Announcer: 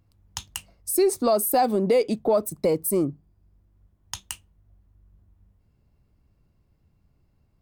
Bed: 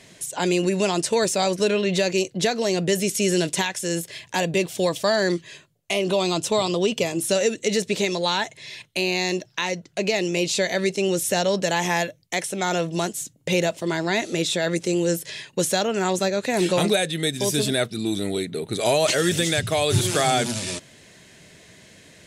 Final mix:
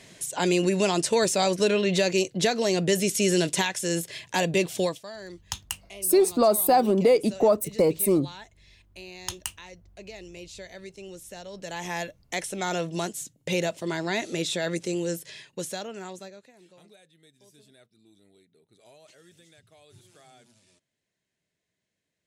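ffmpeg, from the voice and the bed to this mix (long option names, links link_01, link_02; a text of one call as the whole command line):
ffmpeg -i stem1.wav -i stem2.wav -filter_complex "[0:a]adelay=5150,volume=1dB[link_01];[1:a]volume=13.5dB,afade=type=out:start_time=4.79:duration=0.22:silence=0.11885,afade=type=in:start_time=11.51:duration=0.81:silence=0.177828,afade=type=out:start_time=14.65:duration=1.88:silence=0.0334965[link_02];[link_01][link_02]amix=inputs=2:normalize=0" out.wav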